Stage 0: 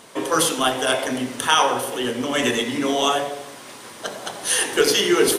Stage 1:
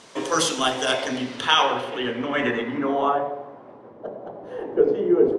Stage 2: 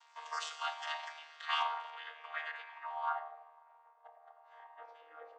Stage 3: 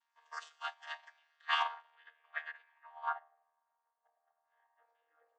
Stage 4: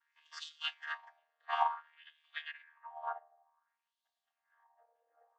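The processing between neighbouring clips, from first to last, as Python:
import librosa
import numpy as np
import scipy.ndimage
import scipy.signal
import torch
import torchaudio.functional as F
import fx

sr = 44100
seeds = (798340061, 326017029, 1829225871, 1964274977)

y1 = fx.filter_sweep_lowpass(x, sr, from_hz=6300.0, to_hz=560.0, start_s=0.79, end_s=4.01, q=1.4)
y1 = y1 * librosa.db_to_amplitude(-2.5)
y2 = fx.chord_vocoder(y1, sr, chord='bare fifth', root=51)
y2 = scipy.signal.sosfilt(scipy.signal.ellip(4, 1.0, 70, 830.0, 'highpass', fs=sr, output='sos'), y2)
y2 = y2 * librosa.db_to_amplitude(-7.0)
y3 = fx.peak_eq(y2, sr, hz=1700.0, db=8.5, octaves=0.2)
y3 = fx.upward_expand(y3, sr, threshold_db=-46.0, expansion=2.5)
y3 = y3 * librosa.db_to_amplitude(2.5)
y4 = fx.high_shelf(y3, sr, hz=3700.0, db=11.5)
y4 = fx.filter_lfo_bandpass(y4, sr, shape='sine', hz=0.55, low_hz=540.0, high_hz=3700.0, q=3.3)
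y4 = y4 * librosa.db_to_amplitude(8.0)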